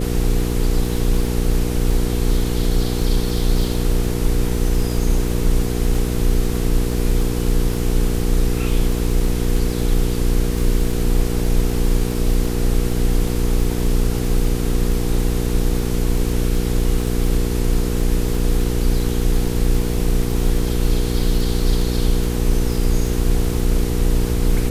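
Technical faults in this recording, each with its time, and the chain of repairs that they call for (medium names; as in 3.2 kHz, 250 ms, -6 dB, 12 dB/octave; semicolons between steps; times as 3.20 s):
crackle 26 per s -24 dBFS
hum 60 Hz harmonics 8 -22 dBFS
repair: de-click; de-hum 60 Hz, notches 8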